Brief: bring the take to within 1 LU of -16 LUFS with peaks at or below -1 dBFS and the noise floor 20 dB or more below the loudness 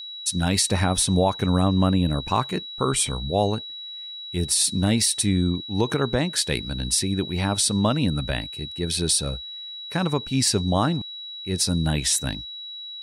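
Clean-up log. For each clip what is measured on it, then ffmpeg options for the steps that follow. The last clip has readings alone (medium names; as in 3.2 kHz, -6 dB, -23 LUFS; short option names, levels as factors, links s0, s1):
steady tone 3.9 kHz; tone level -34 dBFS; loudness -23.0 LUFS; peak level -9.5 dBFS; loudness target -16.0 LUFS
-> -af "bandreject=f=3900:w=30"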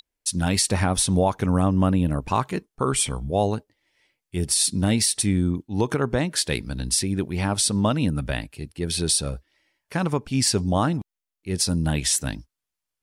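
steady tone not found; loudness -23.0 LUFS; peak level -9.5 dBFS; loudness target -16.0 LUFS
-> -af "volume=2.24"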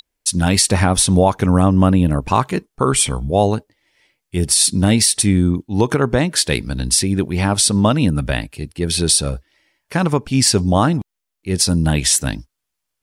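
loudness -16.0 LUFS; peak level -2.5 dBFS; noise floor -78 dBFS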